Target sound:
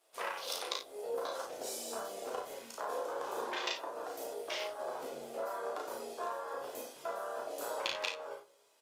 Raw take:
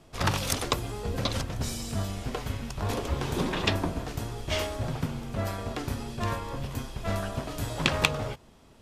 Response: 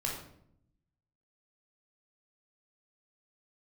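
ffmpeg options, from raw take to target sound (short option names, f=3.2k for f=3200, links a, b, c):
-filter_complex "[0:a]afwtdn=0.02,highpass=f=460:w=0.5412,highpass=f=460:w=1.3066,acompressor=threshold=-41dB:ratio=8,crystalizer=i=2:c=0,flanger=delay=8.5:depth=8:regen=-37:speed=0.51:shape=triangular,asplit=2[a][b];[b]adelay=34,volume=-3dB[c];[a][c]amix=inputs=2:normalize=0,aecho=1:1:36|56:0.422|0.376,asplit=2[d][e];[1:a]atrim=start_sample=2205,lowshelf=f=210:g=11,adelay=6[f];[e][f]afir=irnorm=-1:irlink=0,volume=-20.5dB[g];[d][g]amix=inputs=2:normalize=0,volume=6dB" -ar 48000 -c:a libopus -b:a 32k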